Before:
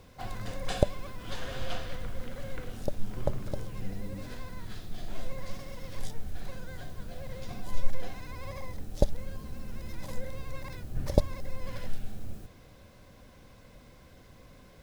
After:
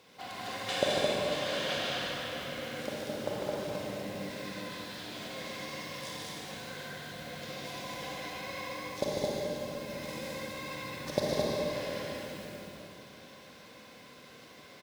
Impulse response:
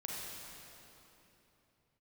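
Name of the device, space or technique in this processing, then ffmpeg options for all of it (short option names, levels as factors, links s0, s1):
stadium PA: -filter_complex "[0:a]highpass=240,equalizer=f=3300:t=o:w=2:g=7,aecho=1:1:148.7|215.7:0.631|0.708[s0];[1:a]atrim=start_sample=2205[s1];[s0][s1]afir=irnorm=-1:irlink=0"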